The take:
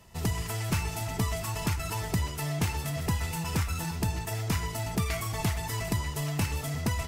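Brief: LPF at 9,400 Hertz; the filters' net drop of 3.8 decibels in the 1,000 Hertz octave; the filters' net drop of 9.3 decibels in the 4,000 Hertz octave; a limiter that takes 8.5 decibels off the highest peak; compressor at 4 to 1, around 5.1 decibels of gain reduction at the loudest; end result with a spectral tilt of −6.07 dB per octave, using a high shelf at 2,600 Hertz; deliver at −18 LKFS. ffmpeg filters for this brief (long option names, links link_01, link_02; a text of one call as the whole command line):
ffmpeg -i in.wav -af "lowpass=9400,equalizer=frequency=1000:width_type=o:gain=-3.5,highshelf=frequency=2600:gain=-4.5,equalizer=frequency=4000:width_type=o:gain=-8.5,acompressor=threshold=-30dB:ratio=4,volume=19.5dB,alimiter=limit=-9dB:level=0:latency=1" out.wav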